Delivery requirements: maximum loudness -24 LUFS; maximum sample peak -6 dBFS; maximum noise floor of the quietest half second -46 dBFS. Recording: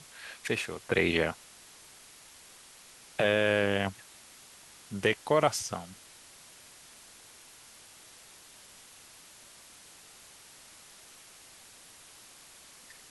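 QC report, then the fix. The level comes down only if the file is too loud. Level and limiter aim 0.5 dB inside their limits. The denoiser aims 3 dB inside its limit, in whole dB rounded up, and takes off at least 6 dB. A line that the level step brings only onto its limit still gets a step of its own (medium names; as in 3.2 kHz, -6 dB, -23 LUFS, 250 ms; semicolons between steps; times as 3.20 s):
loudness -29.5 LUFS: pass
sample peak -10.0 dBFS: pass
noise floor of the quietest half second -54 dBFS: pass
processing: none needed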